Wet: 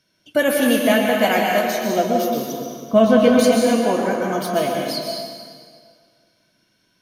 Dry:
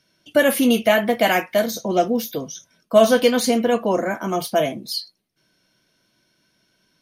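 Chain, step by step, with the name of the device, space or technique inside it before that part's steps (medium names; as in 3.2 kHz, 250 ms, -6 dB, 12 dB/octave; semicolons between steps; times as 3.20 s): 2.52–3.39 s: tone controls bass +11 dB, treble -14 dB; stairwell (reverberation RT60 2.0 s, pre-delay 114 ms, DRR 0 dB); trim -2 dB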